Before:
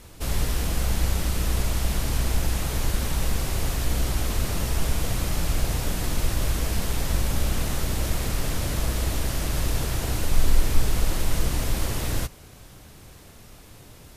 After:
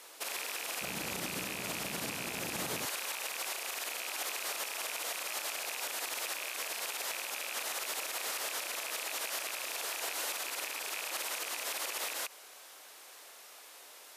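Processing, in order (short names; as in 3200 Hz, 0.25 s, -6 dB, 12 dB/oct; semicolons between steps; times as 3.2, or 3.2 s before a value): rattling part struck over -23 dBFS, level -16 dBFS; Bessel high-pass 650 Hz, order 4, from 0.81 s 230 Hz, from 2.84 s 730 Hz; limiter -26 dBFS, peak gain reduction 11.5 dB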